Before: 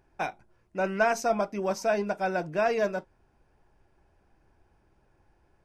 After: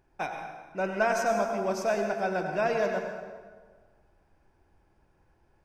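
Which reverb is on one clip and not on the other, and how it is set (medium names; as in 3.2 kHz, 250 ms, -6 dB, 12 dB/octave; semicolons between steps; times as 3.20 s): plate-style reverb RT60 1.5 s, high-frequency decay 0.7×, pre-delay 80 ms, DRR 3.5 dB; trim -2 dB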